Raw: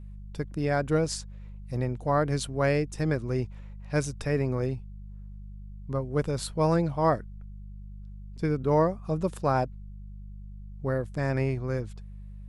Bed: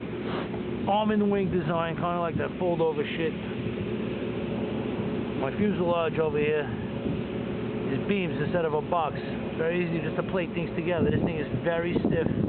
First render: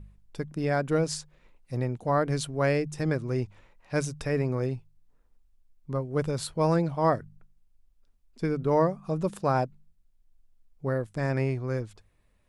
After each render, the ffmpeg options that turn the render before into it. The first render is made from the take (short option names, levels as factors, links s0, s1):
-af "bandreject=f=50:t=h:w=4,bandreject=f=100:t=h:w=4,bandreject=f=150:t=h:w=4,bandreject=f=200:t=h:w=4"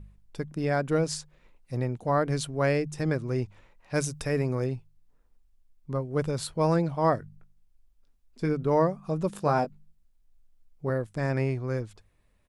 -filter_complex "[0:a]asettb=1/sr,asplit=3[s0][s1][s2];[s0]atrim=end=3.944[s3];[s1]atrim=start=3.94:end=4.64,asetpts=PTS-STARTPTS,afade=t=in:d=0.004:c=qsin,afade=t=out:st=0.696:d=0.004:c=qsin,highshelf=f=7000:g=8.5[s4];[s2]atrim=start=4.636[s5];[s3][s4]acrossfade=d=0.004:c1=hsin:c2=qsin[s6];[s6][s5]acrossfade=d=0.004:c1=qsin:c2=hsin,asplit=3[s7][s8][s9];[s7]afade=t=out:st=7.21:d=0.02[s10];[s8]asplit=2[s11][s12];[s12]adelay=20,volume=0.316[s13];[s11][s13]amix=inputs=2:normalize=0,afade=t=in:st=7.21:d=0.02,afade=t=out:st=8.52:d=0.02[s14];[s9]afade=t=in:st=8.52:d=0.02[s15];[s10][s14][s15]amix=inputs=3:normalize=0,asettb=1/sr,asplit=3[s16][s17][s18];[s16]atrim=end=9.334[s19];[s17]atrim=start=9.33:end=10.9,asetpts=PTS-STARTPTS,afade=t=in:d=0.004:c=qsin,afade=t=out:st=1.566:d=0.004:c=qsin,asplit=2[s20][s21];[s21]adelay=20,volume=0.473[s22];[s20][s22]amix=inputs=2:normalize=0,atrim=end_sample=69237[s23];[s18]atrim=start=10.896[s24];[s19][s23]acrossfade=d=0.004:c1=hsin:c2=qsin[s25];[s25][s24]acrossfade=d=0.004:c1=qsin:c2=hsin"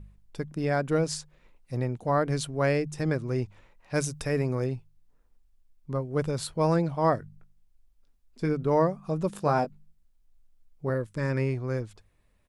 -filter_complex "[0:a]asettb=1/sr,asplit=3[s0][s1][s2];[s0]atrim=end=10.944[s3];[s1]atrim=start=10.94:end=11.54,asetpts=PTS-STARTPTS,afade=t=in:d=0.004:c=qsin,afade=t=out:st=0.596:d=0.004:c=qsin,asuperstop=centerf=730:order=4:qfactor=3.2[s4];[s2]atrim=start=11.536[s5];[s3][s4]acrossfade=d=0.004:c1=hsin:c2=qsin[s6];[s6][s5]acrossfade=d=0.004:c1=qsin:c2=hsin"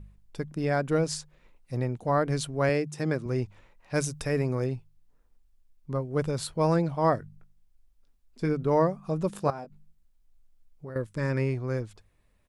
-filter_complex "[0:a]asettb=1/sr,asplit=3[s0][s1][s2];[s0]atrim=end=2.694[s3];[s1]atrim=start=2.69:end=3.26,asetpts=PTS-STARTPTS,afade=t=in:d=0.004:c=qsin,afade=t=out:st=0.566:d=0.004:c=qsin,highpass=130[s4];[s2]atrim=start=3.256[s5];[s3][s4]acrossfade=d=0.004:c1=hsin:c2=qsin[s6];[s6][s5]acrossfade=d=0.004:c1=qsin:c2=hsin,asettb=1/sr,asplit=3[s7][s8][s9];[s7]atrim=end=9.504[s10];[s8]atrim=start=9.5:end=10.96,asetpts=PTS-STARTPTS,afade=t=in:d=0.004:c=qsin,afade=t=out:st=1.456:d=0.004:c=qsin,acompressor=threshold=0.01:ratio=3:attack=3.2:release=140:knee=1:detection=peak[s11];[s9]atrim=start=10.956[s12];[s10][s11]acrossfade=d=0.004:c1=hsin:c2=qsin[s13];[s13][s12]acrossfade=d=0.004:c1=qsin:c2=hsin"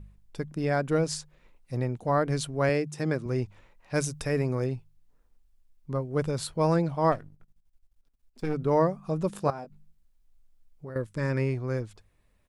-filter_complex "[0:a]asplit=3[s0][s1][s2];[s0]afade=t=out:st=7.11:d=0.02[s3];[s1]aeval=exprs='if(lt(val(0),0),0.251*val(0),val(0))':c=same,afade=t=in:st=7.11:d=0.02,afade=t=out:st=8.53:d=0.02[s4];[s2]afade=t=in:st=8.53:d=0.02[s5];[s3][s4][s5]amix=inputs=3:normalize=0"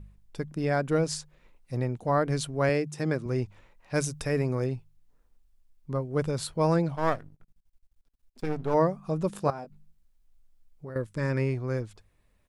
-filter_complex "[0:a]asplit=3[s0][s1][s2];[s0]afade=t=out:st=6.95:d=0.02[s3];[s1]aeval=exprs='if(lt(val(0),0),0.251*val(0),val(0))':c=same,afade=t=in:st=6.95:d=0.02,afade=t=out:st=8.73:d=0.02[s4];[s2]afade=t=in:st=8.73:d=0.02[s5];[s3][s4][s5]amix=inputs=3:normalize=0"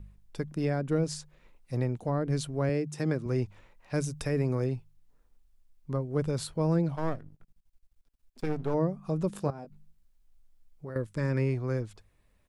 -filter_complex "[0:a]acrossover=split=430[s0][s1];[s1]acompressor=threshold=0.0178:ratio=5[s2];[s0][s2]amix=inputs=2:normalize=0"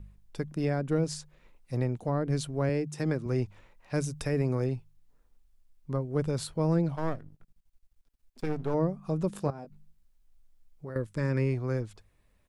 -af "aeval=exprs='0.188*(cos(1*acos(clip(val(0)/0.188,-1,1)))-cos(1*PI/2))+0.00376*(cos(4*acos(clip(val(0)/0.188,-1,1)))-cos(4*PI/2))':c=same"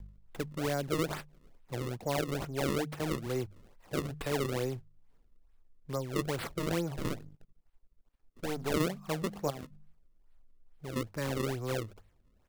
-filter_complex "[0:a]acrossover=split=300[s0][s1];[s0]asoftclip=type=tanh:threshold=0.0126[s2];[s1]acrusher=samples=32:mix=1:aa=0.000001:lfo=1:lforange=51.2:lforate=2.3[s3];[s2][s3]amix=inputs=2:normalize=0"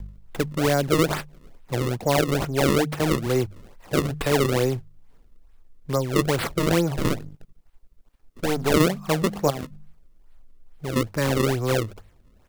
-af "volume=3.76"